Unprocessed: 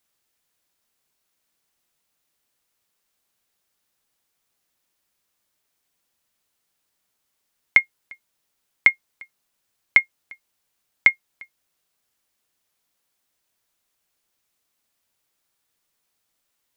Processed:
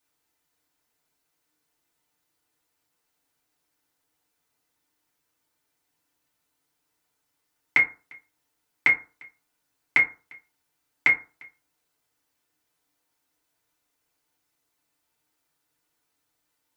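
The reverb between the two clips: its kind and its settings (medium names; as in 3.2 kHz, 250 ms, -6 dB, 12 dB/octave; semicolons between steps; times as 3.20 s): FDN reverb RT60 0.34 s, low-frequency decay 1×, high-frequency decay 0.45×, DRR -5.5 dB; trim -6 dB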